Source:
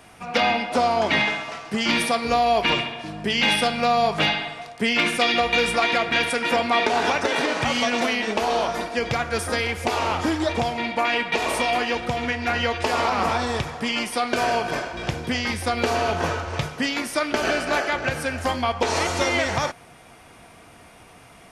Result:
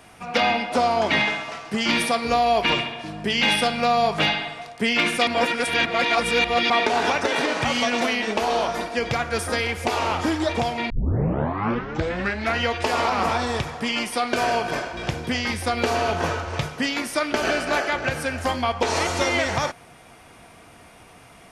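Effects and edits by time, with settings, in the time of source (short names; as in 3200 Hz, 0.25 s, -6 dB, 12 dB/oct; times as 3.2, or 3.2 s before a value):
5.27–6.7 reverse
10.9 tape start 1.67 s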